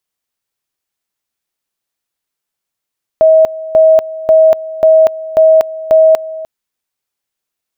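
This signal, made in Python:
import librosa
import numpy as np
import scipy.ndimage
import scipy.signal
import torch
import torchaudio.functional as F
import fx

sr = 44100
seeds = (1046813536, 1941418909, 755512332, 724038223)

y = fx.two_level_tone(sr, hz=638.0, level_db=-3.0, drop_db=17.5, high_s=0.24, low_s=0.3, rounds=6)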